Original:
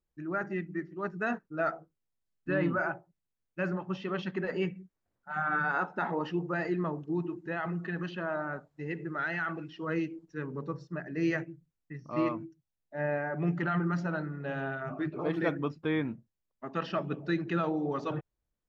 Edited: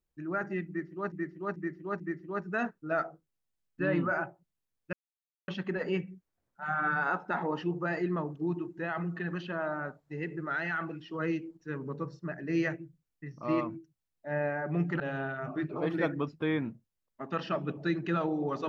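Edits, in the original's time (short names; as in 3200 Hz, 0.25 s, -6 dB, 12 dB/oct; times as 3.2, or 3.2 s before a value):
0.68–1.12 loop, 4 plays
3.61–4.16 mute
13.68–14.43 cut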